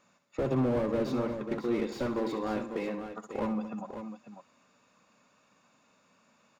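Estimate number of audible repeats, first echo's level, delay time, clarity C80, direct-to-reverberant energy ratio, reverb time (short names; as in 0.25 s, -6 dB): 4, -10.0 dB, 65 ms, none, none, none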